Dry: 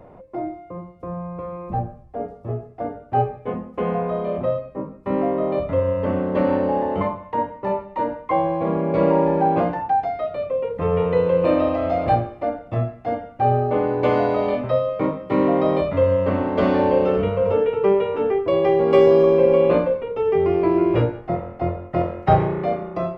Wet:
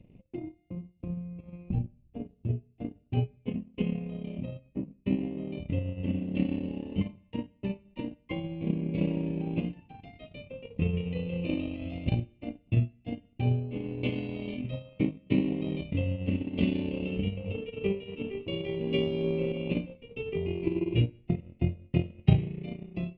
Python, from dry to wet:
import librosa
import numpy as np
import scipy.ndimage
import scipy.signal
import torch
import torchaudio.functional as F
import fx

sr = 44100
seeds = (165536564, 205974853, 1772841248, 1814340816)

y = fx.reverse_delay(x, sr, ms=310, wet_db=-10, at=(17.38, 19.52))
y = fx.curve_eq(y, sr, hz=(240.0, 820.0, 1500.0, 2700.0, 5300.0), db=(0, -27, -27, 6, -15))
y = fx.transient(y, sr, attack_db=9, sustain_db=-10)
y = y * 10.0 ** (-6.0 / 20.0)